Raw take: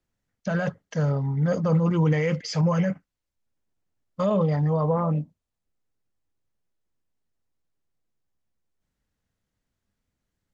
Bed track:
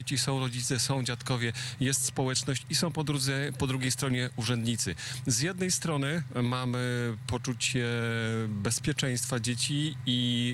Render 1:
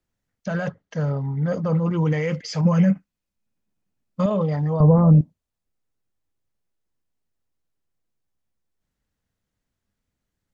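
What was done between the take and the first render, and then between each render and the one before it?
0.68–1.98 s: distance through air 80 m; 2.65–4.26 s: small resonant body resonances 200/2500 Hz, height 10 dB; 4.80–5.21 s: tilt EQ -4.5 dB/octave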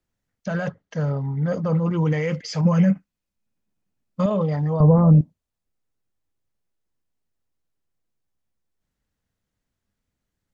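no audible change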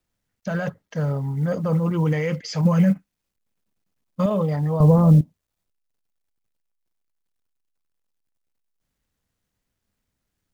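companded quantiser 8-bit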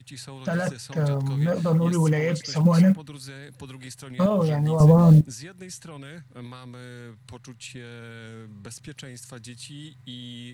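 add bed track -11 dB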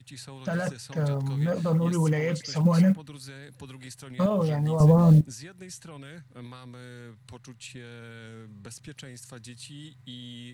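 trim -3 dB

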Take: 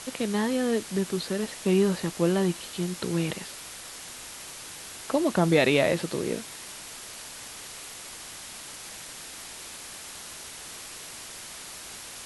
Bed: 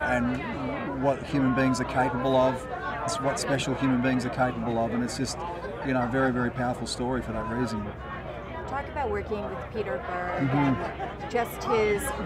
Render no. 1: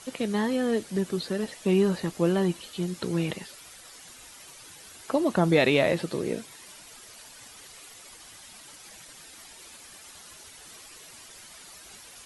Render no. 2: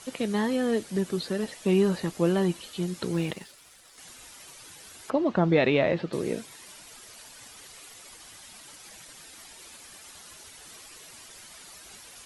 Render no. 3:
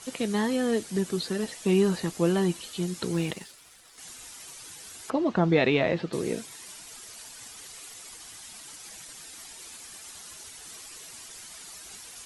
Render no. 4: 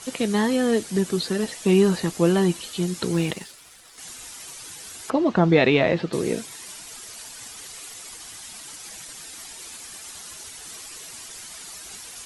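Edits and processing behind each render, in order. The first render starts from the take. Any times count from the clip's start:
noise reduction 10 dB, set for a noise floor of -42 dBFS
3.13–3.98 s: companding laws mixed up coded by A; 5.10–6.13 s: distance through air 210 m
band-stop 570 Hz, Q 12; dynamic bell 7.6 kHz, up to +5 dB, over -53 dBFS, Q 0.76
trim +5 dB

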